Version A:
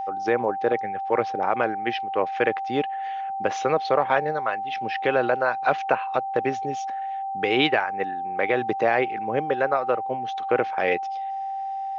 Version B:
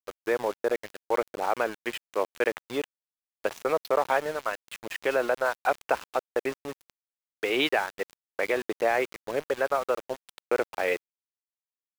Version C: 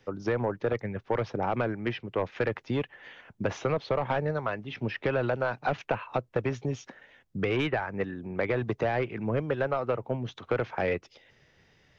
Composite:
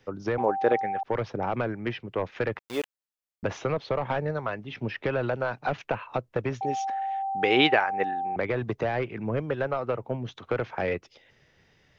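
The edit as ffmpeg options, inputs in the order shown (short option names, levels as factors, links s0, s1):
-filter_complex "[0:a]asplit=2[s0][s1];[2:a]asplit=4[s2][s3][s4][s5];[s2]atrim=end=0.382[s6];[s0]atrim=start=0.378:end=1.032[s7];[s3]atrim=start=1.028:end=2.592[s8];[1:a]atrim=start=2.588:end=3.432[s9];[s4]atrim=start=3.428:end=6.612[s10];[s1]atrim=start=6.608:end=8.362[s11];[s5]atrim=start=8.358[s12];[s6][s7]acrossfade=d=0.004:c1=hsin:c2=hsin[s13];[s13][s8]acrossfade=d=0.004:c1=hsin:c2=hsin[s14];[s14][s9]acrossfade=d=0.004:c1=hsin:c2=hsin[s15];[s15][s10]acrossfade=d=0.004:c1=hsin:c2=hsin[s16];[s16][s11]acrossfade=d=0.004:c1=hsin:c2=hsin[s17];[s17][s12]acrossfade=d=0.004:c1=hsin:c2=hsin"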